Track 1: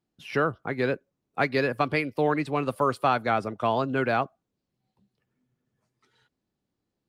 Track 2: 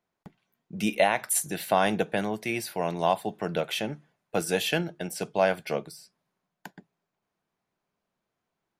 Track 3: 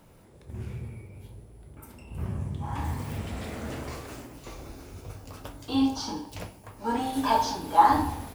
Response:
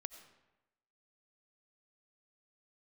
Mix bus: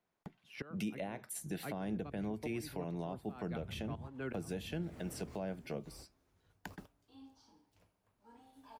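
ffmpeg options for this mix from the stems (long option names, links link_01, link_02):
-filter_complex "[0:a]aeval=exprs='val(0)*pow(10,-21*if(lt(mod(-2.7*n/s,1),2*abs(-2.7)/1000),1-mod(-2.7*n/s,1)/(2*abs(-2.7)/1000),(mod(-2.7*n/s,1)-2*abs(-2.7)/1000)/(1-2*abs(-2.7)/1000))/20)':channel_layout=same,adelay=250,volume=-9dB[link_01];[1:a]highshelf=frequency=4600:gain=-3,volume=-2dB,asplit=2[link_02][link_03];[2:a]acontrast=65,adelay=1400,volume=-18dB[link_04];[link_03]apad=whole_len=429646[link_05];[link_04][link_05]sidechaingate=range=-21dB:threshold=-52dB:ratio=16:detection=peak[link_06];[link_01][link_02][link_06]amix=inputs=3:normalize=0,acrossover=split=370[link_07][link_08];[link_08]acompressor=threshold=-43dB:ratio=4[link_09];[link_07][link_09]amix=inputs=2:normalize=0,alimiter=level_in=5.5dB:limit=-24dB:level=0:latency=1:release=352,volume=-5.5dB"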